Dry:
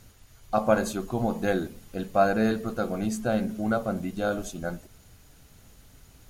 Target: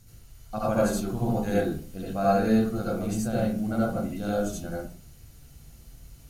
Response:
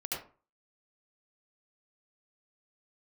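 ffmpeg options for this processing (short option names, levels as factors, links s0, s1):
-filter_complex "[0:a]bass=f=250:g=10,treble=f=4000:g=8[s0];[1:a]atrim=start_sample=2205[s1];[s0][s1]afir=irnorm=-1:irlink=0,volume=0.501"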